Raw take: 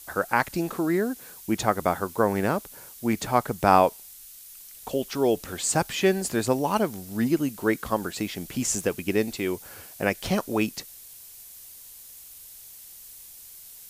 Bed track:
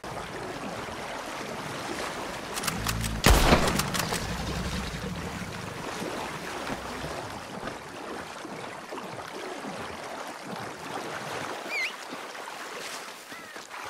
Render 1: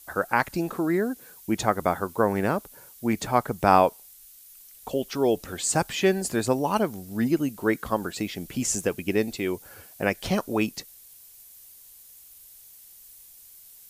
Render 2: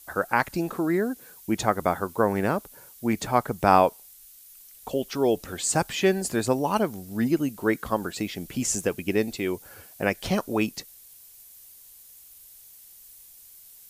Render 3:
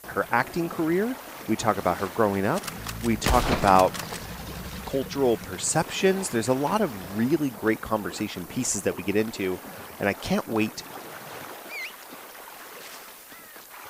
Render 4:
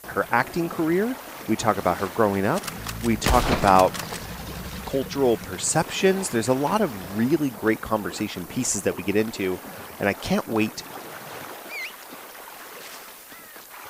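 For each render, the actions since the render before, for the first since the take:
broadband denoise 6 dB, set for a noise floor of −46 dBFS
no processing that can be heard
mix in bed track −5 dB
level +2 dB; brickwall limiter −2 dBFS, peak gain reduction 1 dB

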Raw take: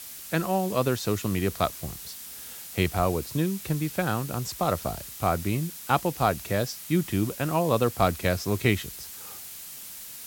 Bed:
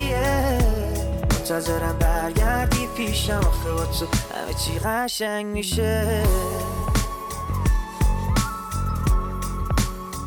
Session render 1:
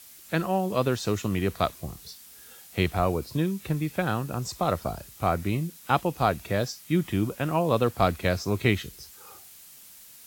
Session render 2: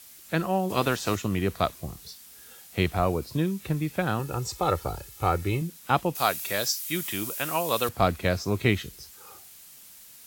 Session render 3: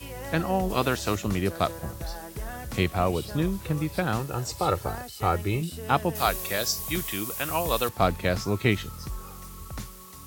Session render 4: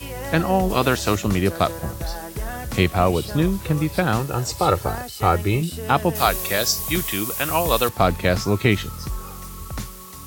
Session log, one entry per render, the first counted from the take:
noise reduction from a noise print 8 dB
0:00.69–0:01.15: ceiling on every frequency bin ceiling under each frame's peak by 13 dB; 0:04.19–0:05.62: comb filter 2.3 ms; 0:06.15–0:07.89: spectral tilt +4 dB per octave
mix in bed −16 dB
level +6.5 dB; brickwall limiter −3 dBFS, peak gain reduction 3 dB

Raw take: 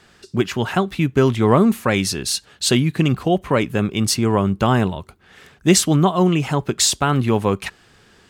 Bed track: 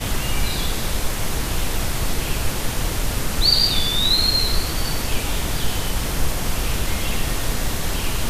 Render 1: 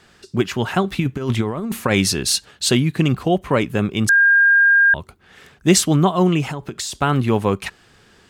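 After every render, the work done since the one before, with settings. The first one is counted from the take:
0:00.84–0:02.51: compressor whose output falls as the input rises −18 dBFS, ratio −0.5
0:04.09–0:04.94: beep over 1,610 Hz −9.5 dBFS
0:06.49–0:06.95: downward compressor 12 to 1, threshold −23 dBFS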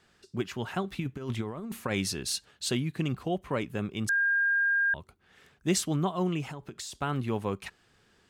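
level −13 dB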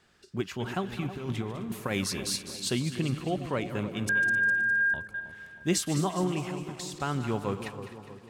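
feedback delay that plays each chunk backwards 130 ms, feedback 60%, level −13 dB
echo with a time of its own for lows and highs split 1,100 Hz, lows 318 ms, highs 204 ms, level −11 dB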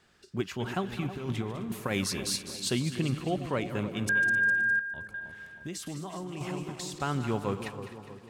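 0:04.79–0:06.41: downward compressor 12 to 1, threshold −34 dBFS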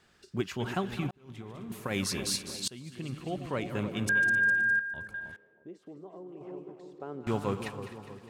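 0:01.11–0:02.15: fade in
0:02.68–0:03.89: fade in, from −22 dB
0:05.36–0:07.27: resonant band-pass 440 Hz, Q 2.6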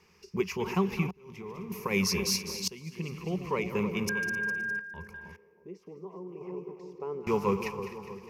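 EQ curve with evenly spaced ripples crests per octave 0.81, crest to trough 15 dB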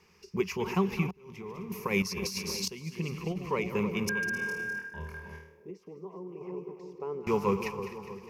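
0:02.02–0:03.38: compressor whose output falls as the input rises −32 dBFS, ratio −0.5
0:04.31–0:05.71: flutter between parallel walls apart 4.4 metres, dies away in 0.6 s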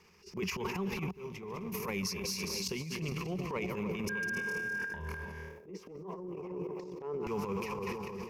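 transient designer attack −11 dB, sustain +11 dB
downward compressor 12 to 1, threshold −32 dBFS, peak gain reduction 11 dB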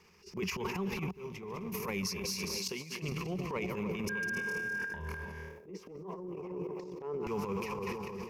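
0:02.58–0:03.02: high-pass filter 210 Hz → 510 Hz 6 dB per octave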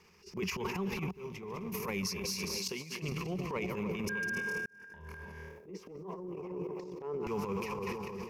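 0:04.66–0:05.64: fade in

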